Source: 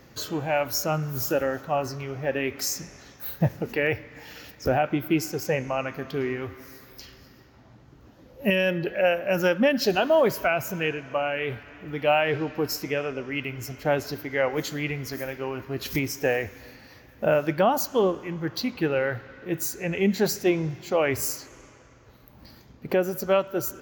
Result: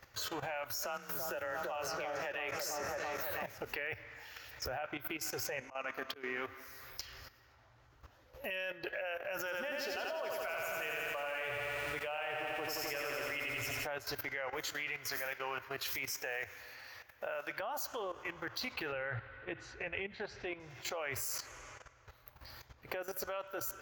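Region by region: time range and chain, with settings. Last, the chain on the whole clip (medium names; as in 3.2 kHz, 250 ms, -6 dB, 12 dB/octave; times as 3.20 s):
0.82–3.58 s: delay with an opening low-pass 333 ms, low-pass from 750 Hz, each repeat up 1 oct, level -6 dB + frequency shift +27 Hz + three bands compressed up and down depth 70%
5.61–6.67 s: resonant low shelf 180 Hz -7 dB, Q 3 + slow attack 270 ms
9.37–13.87 s: band-stop 4.1 kHz, Q 17 + bit-crushed delay 87 ms, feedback 80%, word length 8-bit, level -4.5 dB
14.73–17.60 s: high-pass 63 Hz + bass shelf 320 Hz -9 dB
18.92–20.60 s: low-pass 3.7 kHz 24 dB/octave + bass shelf 190 Hz +8 dB
whole clip: compression 8:1, threshold -28 dBFS; FFT filter 110 Hz 0 dB, 170 Hz -19 dB, 590 Hz 0 dB, 1.4 kHz +6 dB, 4.2 kHz +3 dB; level held to a coarse grid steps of 13 dB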